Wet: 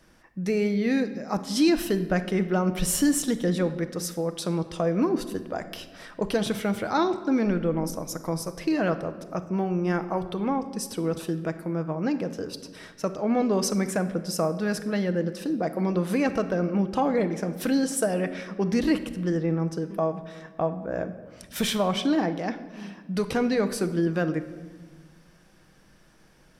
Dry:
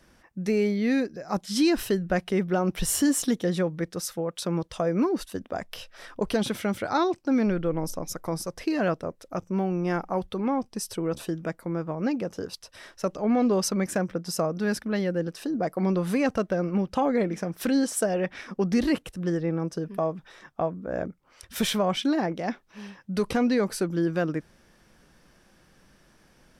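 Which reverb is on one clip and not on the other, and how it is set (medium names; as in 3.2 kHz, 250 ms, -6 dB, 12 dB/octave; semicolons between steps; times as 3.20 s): simulated room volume 1300 m³, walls mixed, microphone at 0.58 m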